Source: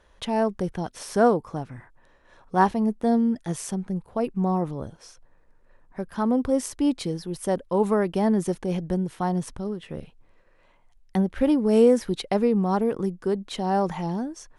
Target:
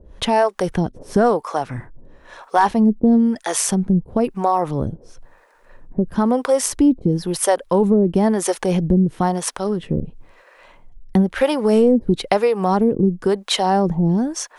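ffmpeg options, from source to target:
-filter_complex "[0:a]acrossover=split=470[a][b];[a]aeval=exprs='val(0)*(1-1/2+1/2*cos(2*PI*1*n/s))':c=same[c];[b]aeval=exprs='val(0)*(1-1/2-1/2*cos(2*PI*1*n/s))':c=same[d];[c][d]amix=inputs=2:normalize=0,apsyclip=18dB,acompressor=threshold=-17dB:ratio=2"

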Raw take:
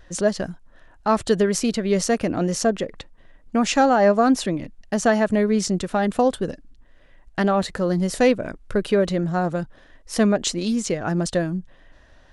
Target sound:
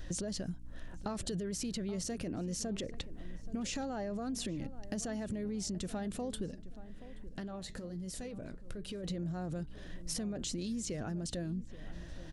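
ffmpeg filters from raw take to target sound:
-filter_complex "[0:a]equalizer=f=1.1k:t=o:w=2.6:g=-10,acontrast=38,alimiter=limit=-21dB:level=0:latency=1:release=32,acompressor=threshold=-37dB:ratio=6,aeval=exprs='val(0)+0.00224*(sin(2*PI*60*n/s)+sin(2*PI*2*60*n/s)/2+sin(2*PI*3*60*n/s)/3+sin(2*PI*4*60*n/s)/4+sin(2*PI*5*60*n/s)/5)':c=same,asettb=1/sr,asplit=3[a][b][c];[a]atrim=end=6.484[d];[b]atrim=start=6.48:end=9.04,asetpts=PTS-STARTPTS,afade=t=in:d=0.004:c=qsin,afade=t=out:st=2.556:d=0.004:c=qsin,flanger=delay=4.1:depth=4.8:regen=-79:speed=1.2:shape=triangular[e];[c]atrim=start=9.036[f];[d][e]acrossfade=d=0.004:c1=hsin:c2=qsin[g];[g][f]acrossfade=d=0.004:c1=qsin:c2=hsin,asplit=2[h][i];[i]adelay=827,lowpass=f=1.4k:p=1,volume=-14.5dB,asplit=2[j][k];[k]adelay=827,lowpass=f=1.4k:p=1,volume=0.35,asplit=2[l][m];[m]adelay=827,lowpass=f=1.4k:p=1,volume=0.35[n];[h][j][l][n]amix=inputs=4:normalize=0,volume=1dB"

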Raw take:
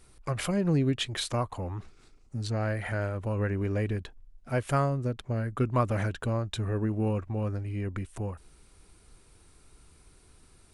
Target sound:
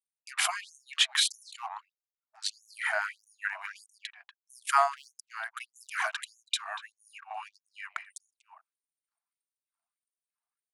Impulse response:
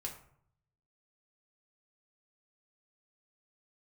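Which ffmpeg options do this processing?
-filter_complex "[0:a]anlmdn=0.0158,asplit=2[a][b];[b]adelay=240,highpass=300,lowpass=3.4k,asoftclip=type=hard:threshold=-22.5dB,volume=-13dB[c];[a][c]amix=inputs=2:normalize=0,afftfilt=real='re*gte(b*sr/1024,620*pow(5800/620,0.5+0.5*sin(2*PI*1.6*pts/sr)))':imag='im*gte(b*sr/1024,620*pow(5800/620,0.5+0.5*sin(2*PI*1.6*pts/sr)))':win_size=1024:overlap=0.75,volume=8dB"

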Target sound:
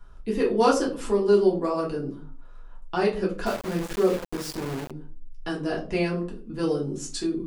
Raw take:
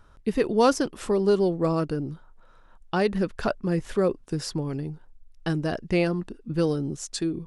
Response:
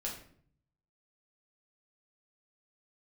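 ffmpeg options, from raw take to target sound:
-filter_complex "[0:a]acrossover=split=190|800[a][b][c];[a]acompressor=threshold=-43dB:ratio=8[d];[d][b][c]amix=inputs=3:normalize=0[e];[1:a]atrim=start_sample=2205,asetrate=79380,aresample=44100[f];[e][f]afir=irnorm=-1:irlink=0,asettb=1/sr,asplit=3[g][h][i];[g]atrim=end=3.464[j];[h]atrim=start=3.46:end=4.91,asetpts=PTS-STARTPTS,afade=t=in:d=0.004:c=qsin,afade=t=out:st=1.446:d=0.004:c=qsin,aeval=exprs='val(0)*gte(abs(val(0)),0.0178)':c=same[k];[i]atrim=start=4.906[l];[j][k]acrossfade=d=0.004:c1=hsin:c2=qsin[m];[m][l]acrossfade=d=0.004:c1=qsin:c2=hsin,volume=4dB"

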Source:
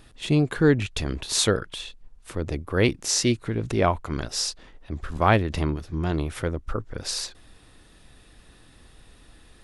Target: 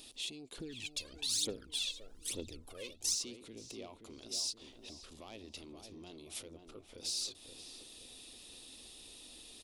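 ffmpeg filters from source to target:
-filter_complex "[0:a]acompressor=threshold=-40dB:ratio=3,asoftclip=type=tanh:threshold=-29dB,alimiter=level_in=12.5dB:limit=-24dB:level=0:latency=1:release=23,volume=-12.5dB,firequalizer=gain_entry='entry(160,0);entry(240,11);entry(1600,-9);entry(2500,8);entry(3700,14)':delay=0.05:min_phase=1,asplit=2[a][b];[b]adelay=526,lowpass=f=1.4k:p=1,volume=-6dB,asplit=2[c][d];[d]adelay=526,lowpass=f=1.4k:p=1,volume=0.51,asplit=2[e][f];[f]adelay=526,lowpass=f=1.4k:p=1,volume=0.51,asplit=2[g][h];[h]adelay=526,lowpass=f=1.4k:p=1,volume=0.51,asplit=2[i][j];[j]adelay=526,lowpass=f=1.4k:p=1,volume=0.51,asplit=2[k][l];[l]adelay=526,lowpass=f=1.4k:p=1,volume=0.51[m];[a][c][e][g][i][k][m]amix=inputs=7:normalize=0,asettb=1/sr,asplit=3[n][o][p];[n]atrim=end=0.584[q];[o]atrim=start=0.58:end=3.15,asetpts=PTS-STARTPTS,afade=t=in:d=0.004:c=qsin,afade=t=out:st=2.566:d=0.004:c=qsin,aphaser=in_gain=1:out_gain=1:delay=2:decay=0.75:speed=1.1:type=triangular[r];[p]atrim=start=3.146[s];[q][r]acrossfade=d=0.004:c1=hsin:c2=qsin[t];[t][s]acrossfade=d=0.004:c1=qsin:c2=hsin,lowshelf=f=490:g=-11,volume=-6.5dB"

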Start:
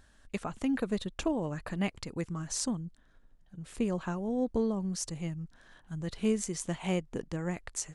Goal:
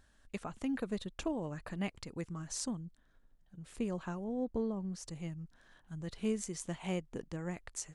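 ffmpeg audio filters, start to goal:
-filter_complex "[0:a]asettb=1/sr,asplit=3[a][b][c];[a]atrim=end=4.244[d];[b]atrim=start=4.24:end=5.08,asetpts=PTS-STARTPTS,afade=t=in:d=0.004:c=qsin,afade=t=out:st=0.836:d=0.004:c=qsin,highshelf=f=3.4k:g=-9[e];[c]atrim=start=5.076[f];[d][e]acrossfade=d=0.004:c1=hsin:c2=qsin[g];[g][f]acrossfade=d=0.004:c1=qsin:c2=hsin,volume=-5.5dB"

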